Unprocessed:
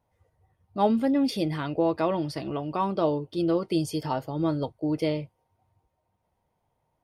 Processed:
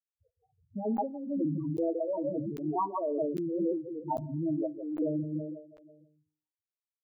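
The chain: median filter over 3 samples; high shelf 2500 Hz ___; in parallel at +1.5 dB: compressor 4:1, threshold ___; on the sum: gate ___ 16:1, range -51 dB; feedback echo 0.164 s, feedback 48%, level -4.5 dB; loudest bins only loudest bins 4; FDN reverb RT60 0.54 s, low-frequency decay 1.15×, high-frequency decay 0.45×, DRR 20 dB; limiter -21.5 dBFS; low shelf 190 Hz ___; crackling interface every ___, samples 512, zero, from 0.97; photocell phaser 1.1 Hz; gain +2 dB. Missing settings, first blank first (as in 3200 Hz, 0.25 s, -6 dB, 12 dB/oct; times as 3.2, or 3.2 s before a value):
-7 dB, -35 dBFS, -59 dBFS, -11 dB, 0.80 s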